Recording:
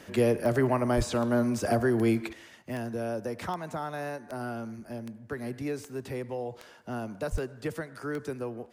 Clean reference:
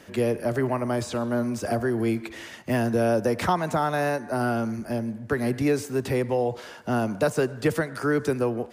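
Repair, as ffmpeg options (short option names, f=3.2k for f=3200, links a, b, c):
-filter_complex "[0:a]adeclick=t=4,asplit=3[a][b][c];[a]afade=t=out:st=0.96:d=0.02[d];[b]highpass=f=140:w=0.5412,highpass=f=140:w=1.3066,afade=t=in:st=0.96:d=0.02,afade=t=out:st=1.08:d=0.02[e];[c]afade=t=in:st=1.08:d=0.02[f];[d][e][f]amix=inputs=3:normalize=0,asplit=3[g][h][i];[g]afade=t=out:st=7.31:d=0.02[j];[h]highpass=f=140:w=0.5412,highpass=f=140:w=1.3066,afade=t=in:st=7.31:d=0.02,afade=t=out:st=7.43:d=0.02[k];[i]afade=t=in:st=7.43:d=0.02[l];[j][k][l]amix=inputs=3:normalize=0,asetnsamples=n=441:p=0,asendcmd='2.33 volume volume 10.5dB',volume=0dB"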